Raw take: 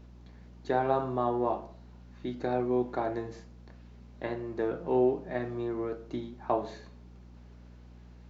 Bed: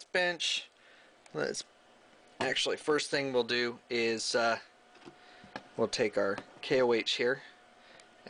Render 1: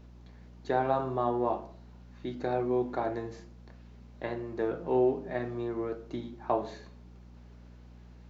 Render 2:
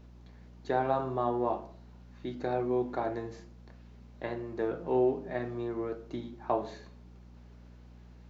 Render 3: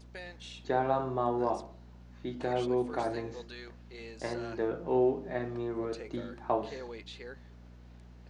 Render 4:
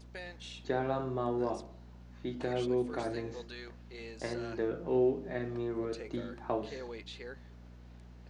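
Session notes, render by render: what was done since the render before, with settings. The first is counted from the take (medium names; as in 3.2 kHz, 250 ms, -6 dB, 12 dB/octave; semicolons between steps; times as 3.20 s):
de-hum 50 Hz, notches 8
trim -1 dB
add bed -16 dB
dynamic bell 870 Hz, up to -8 dB, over -45 dBFS, Q 1.4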